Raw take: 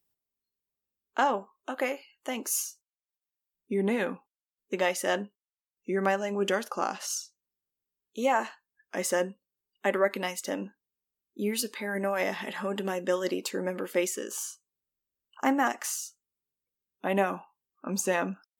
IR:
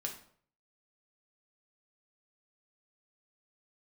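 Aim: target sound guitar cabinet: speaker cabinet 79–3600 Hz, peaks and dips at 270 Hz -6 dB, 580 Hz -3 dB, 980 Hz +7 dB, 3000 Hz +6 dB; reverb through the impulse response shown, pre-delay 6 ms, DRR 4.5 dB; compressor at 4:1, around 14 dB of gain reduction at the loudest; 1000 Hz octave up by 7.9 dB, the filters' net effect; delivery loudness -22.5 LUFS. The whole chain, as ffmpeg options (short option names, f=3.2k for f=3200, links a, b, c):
-filter_complex "[0:a]equalizer=f=1k:t=o:g=6.5,acompressor=threshold=-34dB:ratio=4,asplit=2[a][b];[1:a]atrim=start_sample=2205,adelay=6[c];[b][c]afir=irnorm=-1:irlink=0,volume=-4.5dB[d];[a][d]amix=inputs=2:normalize=0,highpass=79,equalizer=f=270:t=q:w=4:g=-6,equalizer=f=580:t=q:w=4:g=-3,equalizer=f=980:t=q:w=4:g=7,equalizer=f=3k:t=q:w=4:g=6,lowpass=f=3.6k:w=0.5412,lowpass=f=3.6k:w=1.3066,volume=14dB"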